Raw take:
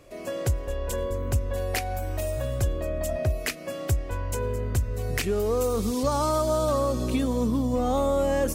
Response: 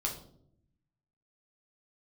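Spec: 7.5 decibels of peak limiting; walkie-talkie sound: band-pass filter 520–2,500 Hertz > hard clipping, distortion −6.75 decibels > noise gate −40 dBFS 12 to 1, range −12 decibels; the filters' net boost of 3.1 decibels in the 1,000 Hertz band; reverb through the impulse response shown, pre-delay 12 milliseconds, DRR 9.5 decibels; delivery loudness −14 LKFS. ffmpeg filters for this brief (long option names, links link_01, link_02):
-filter_complex "[0:a]equalizer=frequency=1000:width_type=o:gain=4.5,alimiter=limit=-19.5dB:level=0:latency=1,asplit=2[link_01][link_02];[1:a]atrim=start_sample=2205,adelay=12[link_03];[link_02][link_03]afir=irnorm=-1:irlink=0,volume=-12.5dB[link_04];[link_01][link_04]amix=inputs=2:normalize=0,highpass=520,lowpass=2500,asoftclip=type=hard:threshold=-34.5dB,agate=range=-12dB:threshold=-40dB:ratio=12,volume=23.5dB"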